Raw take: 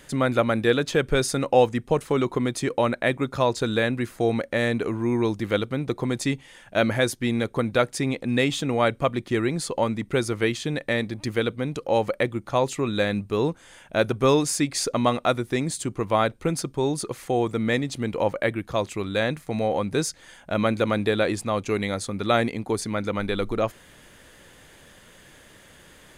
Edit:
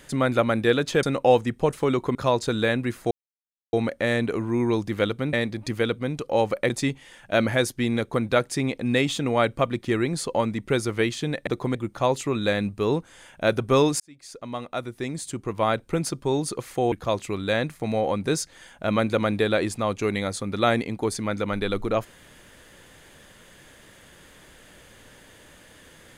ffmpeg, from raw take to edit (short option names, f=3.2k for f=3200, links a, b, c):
-filter_complex "[0:a]asplit=10[a][b][c][d][e][f][g][h][i][j];[a]atrim=end=1.032[k];[b]atrim=start=1.308:end=2.432[l];[c]atrim=start=3.288:end=4.25,asetpts=PTS-STARTPTS,afade=t=out:st=0.958:d=0.004:c=hsin,apad=pad_dur=0.62[m];[d]atrim=start=4.25:end=5.852,asetpts=PTS-STARTPTS,afade=t=in:d=0.004:c=hsin[n];[e]atrim=start=10.898:end=12.272[o];[f]atrim=start=6.128:end=10.902[p];[g]atrim=start=5.848:end=6.132[q];[h]atrim=start=12.268:end=14.52,asetpts=PTS-STARTPTS,afade=t=out:st=2.248:d=0.004:c=hsin[r];[i]atrim=start=14.52:end=17.442,asetpts=PTS-STARTPTS,afade=t=in:d=2.01[s];[j]atrim=start=18.588[t];[k][l]acrossfade=d=0.004:c1=hsin:c2=hsin[u];[m][n]concat=n=2:v=0:a=1[v];[u][v]acrossfade=d=0.004:c1=hsin:c2=hsin[w];[w][o]acrossfade=d=0.004:c1=hsin:c2=hsin[x];[x][p]acrossfade=d=0.004:c1=hsin:c2=hsin[y];[y][q]acrossfade=d=0.004:c1=hsin:c2=hsin[z];[r][s]concat=n=2:v=0:a=1[aa];[z][aa]acrossfade=d=0.004:c1=hsin:c2=hsin[ab];[ab][t]acrossfade=d=0.004:c1=hsin:c2=hsin"